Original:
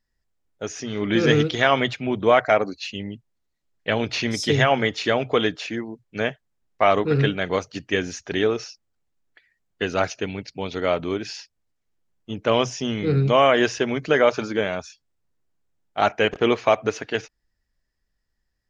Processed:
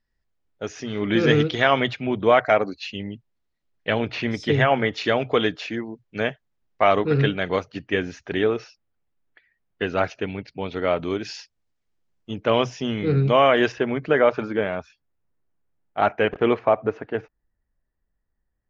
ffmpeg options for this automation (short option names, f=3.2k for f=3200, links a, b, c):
-af "asetnsamples=n=441:p=0,asendcmd='3.99 lowpass f 2700;4.93 lowpass f 4800;7.6 lowpass f 3000;10.99 lowpass f 6600;12.4 lowpass f 3800;13.72 lowpass f 2200;16.59 lowpass f 1300',lowpass=4.5k"